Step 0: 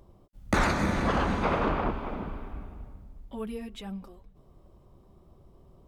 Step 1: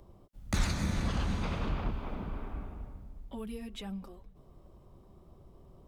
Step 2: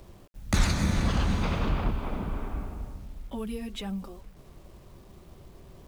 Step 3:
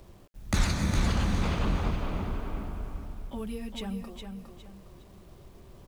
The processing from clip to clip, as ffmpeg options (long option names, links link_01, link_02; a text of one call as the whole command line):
ffmpeg -i in.wav -filter_complex "[0:a]acrossover=split=180|3000[link_01][link_02][link_03];[link_02]acompressor=threshold=-42dB:ratio=4[link_04];[link_01][link_04][link_03]amix=inputs=3:normalize=0" out.wav
ffmpeg -i in.wav -af "acrusher=bits=10:mix=0:aa=0.000001,volume=6dB" out.wav
ffmpeg -i in.wav -af "aecho=1:1:410|820|1230|1640:0.473|0.147|0.0455|0.0141,volume=-2dB" out.wav